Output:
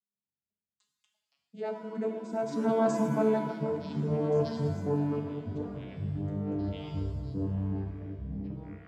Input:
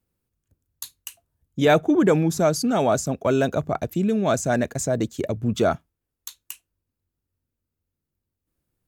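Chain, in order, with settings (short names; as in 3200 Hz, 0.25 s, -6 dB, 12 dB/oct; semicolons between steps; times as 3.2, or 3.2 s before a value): vocoder on a gliding note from G3, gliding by +6 st; Doppler pass-by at 2.98, 11 m/s, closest 2.3 m; echoes that change speed 0.118 s, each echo -7 st, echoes 3; shimmer reverb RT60 1.1 s, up +7 st, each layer -8 dB, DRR 3 dB; gain -2 dB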